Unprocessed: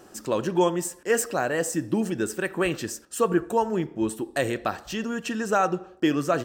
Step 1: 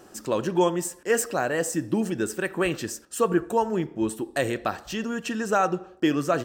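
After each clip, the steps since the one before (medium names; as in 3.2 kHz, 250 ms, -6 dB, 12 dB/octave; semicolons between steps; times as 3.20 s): no audible change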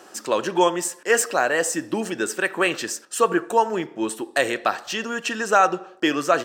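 frequency weighting A; trim +6.5 dB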